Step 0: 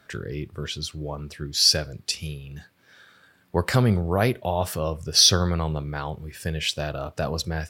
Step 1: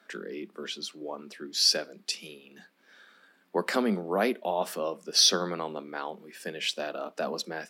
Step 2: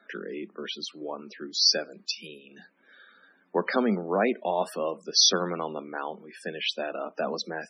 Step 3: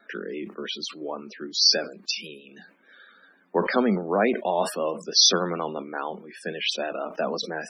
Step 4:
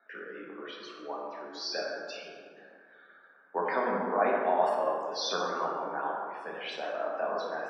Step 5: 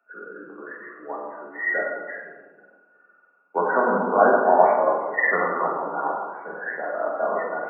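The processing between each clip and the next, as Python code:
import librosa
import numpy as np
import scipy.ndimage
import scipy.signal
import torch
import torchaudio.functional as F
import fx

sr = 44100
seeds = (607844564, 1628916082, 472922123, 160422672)

y1 = scipy.signal.sosfilt(scipy.signal.butter(12, 190.0, 'highpass', fs=sr, output='sos'), x)
y1 = fx.high_shelf(y1, sr, hz=6500.0, db=-5.5)
y1 = y1 * librosa.db_to_amplitude(-3.0)
y2 = fx.spec_topn(y1, sr, count=64)
y2 = y2 * librosa.db_to_amplitude(2.0)
y3 = fx.vibrato(y2, sr, rate_hz=6.3, depth_cents=38.0)
y3 = fx.sustainer(y3, sr, db_per_s=140.0)
y3 = y3 * librosa.db_to_amplitude(2.5)
y4 = fx.bandpass_q(y3, sr, hz=950.0, q=1.1)
y4 = fx.rev_plate(y4, sr, seeds[0], rt60_s=2.1, hf_ratio=0.4, predelay_ms=0, drr_db=-3.5)
y4 = y4 * librosa.db_to_amplitude(-5.5)
y5 = fx.freq_compress(y4, sr, knee_hz=1400.0, ratio=4.0)
y5 = fx.band_widen(y5, sr, depth_pct=40)
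y5 = y5 * librosa.db_to_amplitude(8.0)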